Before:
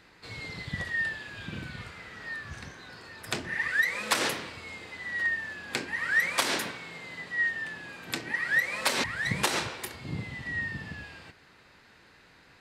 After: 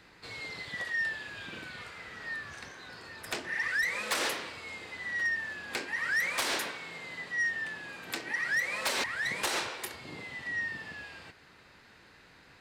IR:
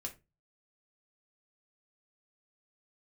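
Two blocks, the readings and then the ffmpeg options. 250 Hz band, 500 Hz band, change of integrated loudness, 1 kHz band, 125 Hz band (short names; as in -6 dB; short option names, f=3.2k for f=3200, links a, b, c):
-7.0 dB, -3.0 dB, -3.0 dB, -3.0 dB, -12.5 dB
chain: -filter_complex "[0:a]acrossover=split=310[a][b];[a]acompressor=threshold=-55dB:ratio=5[c];[b]asoftclip=type=tanh:threshold=-24.5dB[d];[c][d]amix=inputs=2:normalize=0"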